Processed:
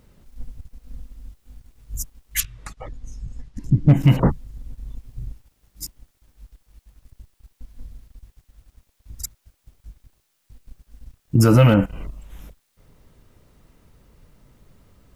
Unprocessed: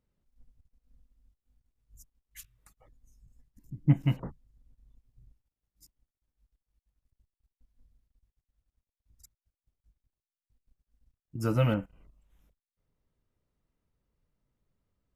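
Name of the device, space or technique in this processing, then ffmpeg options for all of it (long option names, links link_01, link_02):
loud club master: -filter_complex "[0:a]asettb=1/sr,asplit=3[link_01][link_02][link_03];[link_01]atrim=end=2.404[link_04];[link_02]atrim=start=2.4:end=3.88,asetpts=PTS-STARTPTS,afade=type=in:duration=0.004:curve=qsin,afade=type=out:start_time=1.476:duration=0.004:curve=qsin,lowpass=5800[link_05];[link_03]atrim=start=3.876[link_06];[link_04][link_05]acrossfade=duration=0.004:curve1=hsin:curve2=qsin[link_07];[link_07][link_06]acrossfade=duration=0.004:curve1=qsin:curve2=hsin,acompressor=threshold=-34dB:ratio=1.5,asoftclip=type=hard:threshold=-22.5dB,alimiter=level_in=31dB:limit=-1dB:release=50:level=0:latency=1,volume=-5dB"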